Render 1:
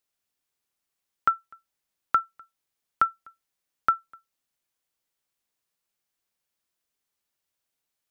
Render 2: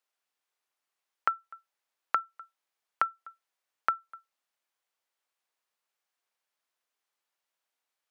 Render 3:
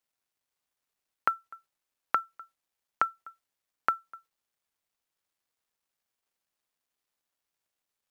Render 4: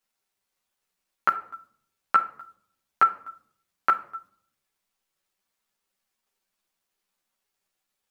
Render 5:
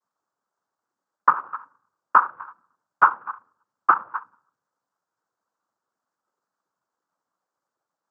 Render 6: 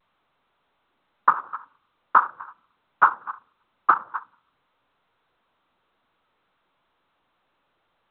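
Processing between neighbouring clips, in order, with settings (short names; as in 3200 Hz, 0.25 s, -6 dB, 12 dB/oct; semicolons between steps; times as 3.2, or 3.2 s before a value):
HPF 780 Hz 12 dB/oct; tilt -3 dB/oct; compressor, threshold -28 dBFS, peak gain reduction 9.5 dB; gain +4 dB
low shelf 350 Hz +10 dB; companded quantiser 8-bit
on a send at -9 dB: reverb RT60 0.60 s, pre-delay 5 ms; on the sum: ensemble effect; gain +7.5 dB
treble ducked by the level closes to 1300 Hz, closed at -24 dBFS; noise vocoder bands 8; resonant high shelf 1800 Hz -13 dB, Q 3; gain +2 dB
gain -1 dB; A-law 64 kbps 8000 Hz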